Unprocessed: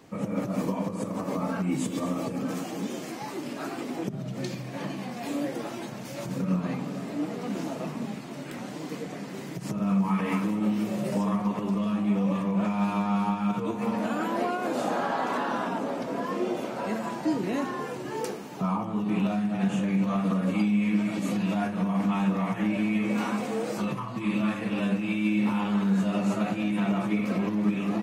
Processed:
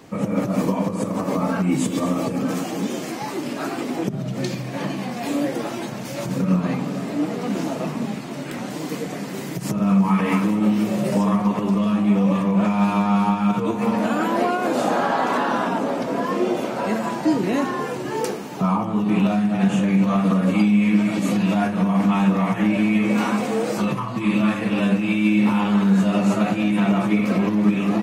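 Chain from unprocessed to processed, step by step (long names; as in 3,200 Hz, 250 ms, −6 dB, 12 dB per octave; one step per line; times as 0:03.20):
0:08.70–0:09.72: high-shelf EQ 9,500 Hz +8 dB
level +7.5 dB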